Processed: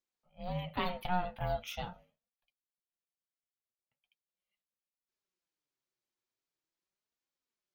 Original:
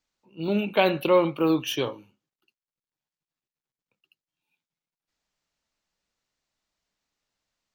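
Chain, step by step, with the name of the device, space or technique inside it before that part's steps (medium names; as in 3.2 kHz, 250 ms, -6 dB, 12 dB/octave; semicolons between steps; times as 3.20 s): alien voice (ring modulator 360 Hz; flange 0.41 Hz, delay 3.5 ms, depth 5.2 ms, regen +40%); trim -6 dB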